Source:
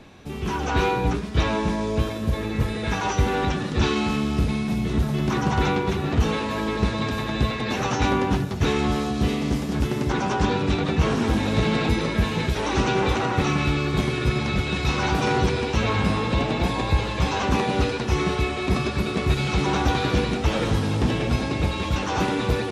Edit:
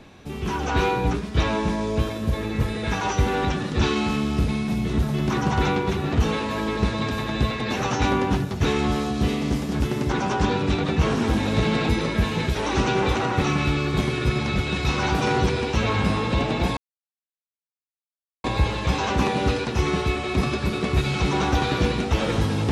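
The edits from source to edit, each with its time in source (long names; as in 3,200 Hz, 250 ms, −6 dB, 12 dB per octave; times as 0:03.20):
0:16.77: splice in silence 1.67 s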